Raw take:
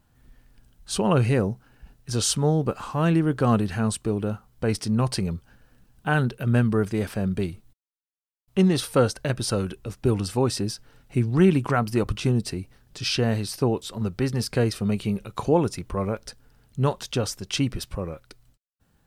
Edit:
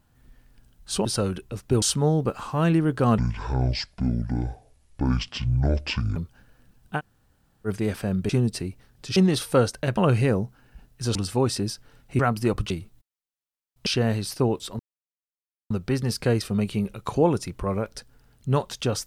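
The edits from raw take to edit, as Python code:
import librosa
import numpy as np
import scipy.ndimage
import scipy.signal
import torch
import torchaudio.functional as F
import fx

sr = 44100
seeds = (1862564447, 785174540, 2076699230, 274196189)

y = fx.edit(x, sr, fx.swap(start_s=1.05, length_s=1.18, other_s=9.39, other_length_s=0.77),
    fx.speed_span(start_s=3.59, length_s=1.7, speed=0.57),
    fx.room_tone_fill(start_s=6.11, length_s=0.69, crossfade_s=0.06),
    fx.swap(start_s=7.42, length_s=1.16, other_s=12.21, other_length_s=0.87),
    fx.cut(start_s=11.2, length_s=0.5),
    fx.insert_silence(at_s=14.01, length_s=0.91), tone=tone)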